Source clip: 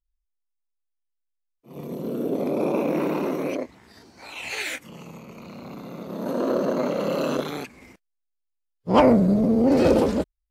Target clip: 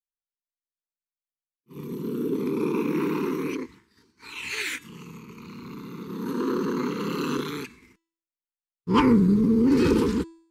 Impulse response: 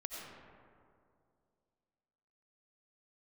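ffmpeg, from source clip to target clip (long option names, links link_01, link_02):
-af "agate=range=-33dB:threshold=-41dB:ratio=3:detection=peak,asuperstop=centerf=650:order=8:qfactor=1.4,bandreject=frequency=330.2:width_type=h:width=4,bandreject=frequency=660.4:width_type=h:width=4,bandreject=frequency=990.6:width_type=h:width=4,bandreject=frequency=1320.8:width_type=h:width=4,bandreject=frequency=1651:width_type=h:width=4,bandreject=frequency=1981.2:width_type=h:width=4,bandreject=frequency=2311.4:width_type=h:width=4,bandreject=frequency=2641.6:width_type=h:width=4,bandreject=frequency=2971.8:width_type=h:width=4,bandreject=frequency=3302:width_type=h:width=4,bandreject=frequency=3632.2:width_type=h:width=4,bandreject=frequency=3962.4:width_type=h:width=4,bandreject=frequency=4292.6:width_type=h:width=4,bandreject=frequency=4622.8:width_type=h:width=4,bandreject=frequency=4953:width_type=h:width=4,bandreject=frequency=5283.2:width_type=h:width=4,bandreject=frequency=5613.4:width_type=h:width=4,bandreject=frequency=5943.6:width_type=h:width=4,bandreject=frequency=6273.8:width_type=h:width=4,bandreject=frequency=6604:width_type=h:width=4,bandreject=frequency=6934.2:width_type=h:width=4,bandreject=frequency=7264.4:width_type=h:width=4,bandreject=frequency=7594.6:width_type=h:width=4,bandreject=frequency=7924.8:width_type=h:width=4,bandreject=frequency=8255:width_type=h:width=4,bandreject=frequency=8585.2:width_type=h:width=4,bandreject=frequency=8915.4:width_type=h:width=4,bandreject=frequency=9245.6:width_type=h:width=4"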